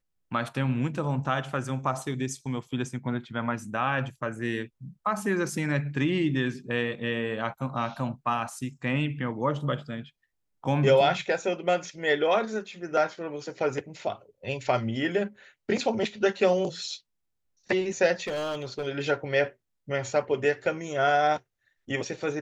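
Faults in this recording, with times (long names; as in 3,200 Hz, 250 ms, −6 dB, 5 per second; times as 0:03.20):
0:18.27–0:18.87: clipping −27.5 dBFS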